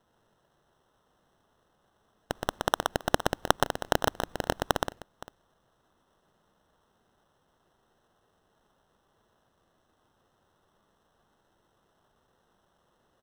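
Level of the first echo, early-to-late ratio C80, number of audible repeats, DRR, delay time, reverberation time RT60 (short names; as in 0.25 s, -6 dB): -4.0 dB, none, 2, none, 0.121 s, none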